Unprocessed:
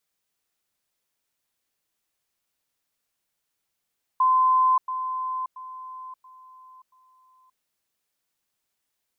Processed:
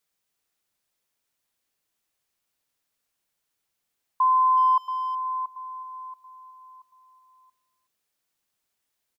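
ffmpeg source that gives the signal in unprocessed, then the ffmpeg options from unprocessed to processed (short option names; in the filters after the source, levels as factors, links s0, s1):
-f lavfi -i "aevalsrc='pow(10,(-16-10*floor(t/0.68))/20)*sin(2*PI*1030*t)*clip(min(mod(t,0.68),0.58-mod(t,0.68))/0.005,0,1)':d=3.4:s=44100"
-filter_complex "[0:a]asplit=2[s0][s1];[s1]adelay=370,highpass=300,lowpass=3400,asoftclip=type=hard:threshold=0.0562,volume=0.112[s2];[s0][s2]amix=inputs=2:normalize=0"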